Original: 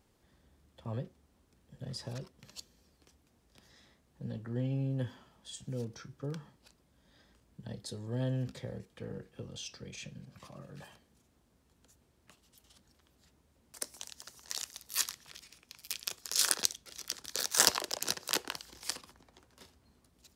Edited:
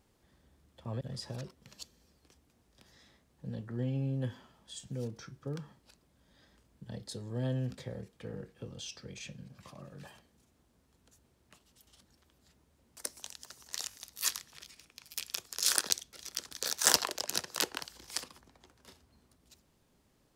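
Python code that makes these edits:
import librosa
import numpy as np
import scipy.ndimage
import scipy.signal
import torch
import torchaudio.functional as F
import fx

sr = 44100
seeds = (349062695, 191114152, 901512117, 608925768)

y = fx.edit(x, sr, fx.cut(start_s=1.01, length_s=0.77),
    fx.stutter(start_s=14.66, slice_s=0.02, count=3), tone=tone)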